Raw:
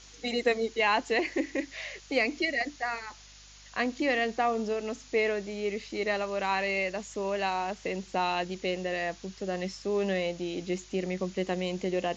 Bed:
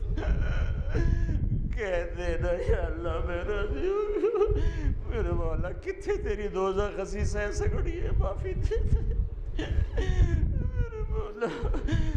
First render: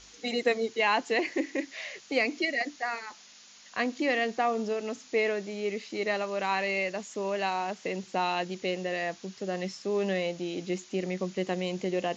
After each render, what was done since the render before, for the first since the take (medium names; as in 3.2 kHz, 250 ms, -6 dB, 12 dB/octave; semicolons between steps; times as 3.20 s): de-hum 50 Hz, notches 3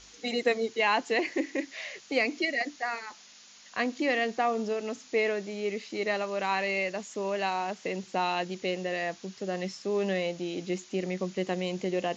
no audible change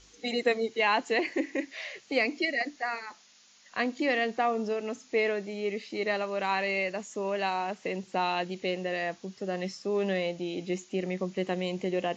noise print and reduce 6 dB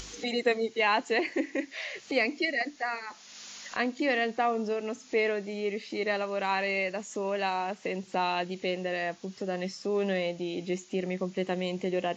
upward compressor, threshold -31 dBFS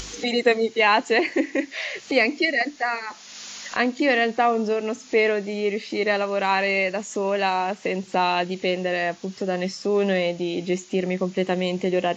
trim +7.5 dB